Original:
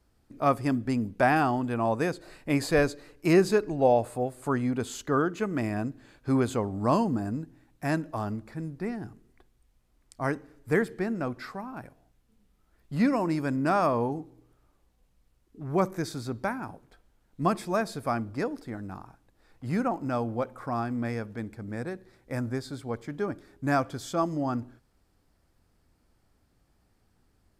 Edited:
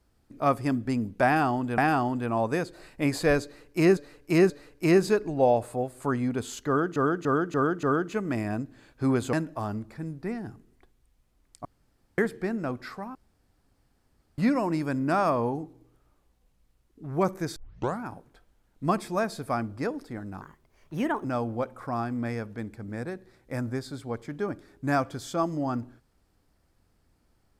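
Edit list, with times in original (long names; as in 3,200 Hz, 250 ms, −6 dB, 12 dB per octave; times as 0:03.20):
0:01.26–0:01.78: repeat, 2 plays
0:02.92–0:03.45: repeat, 3 plays
0:05.09–0:05.38: repeat, 5 plays
0:06.59–0:07.90: remove
0:10.22–0:10.75: fill with room tone
0:11.72–0:12.95: fill with room tone
0:16.13: tape start 0.47 s
0:18.98–0:20.04: play speed 127%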